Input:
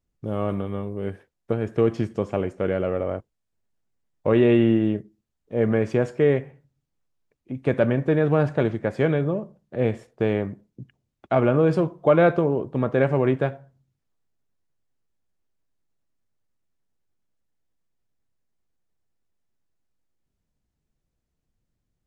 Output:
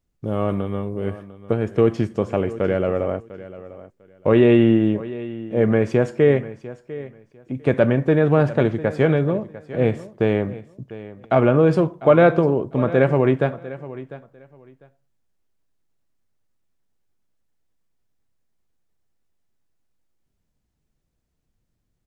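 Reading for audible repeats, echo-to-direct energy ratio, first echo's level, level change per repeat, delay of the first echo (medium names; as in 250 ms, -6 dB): 2, -16.5 dB, -16.5 dB, -14.5 dB, 699 ms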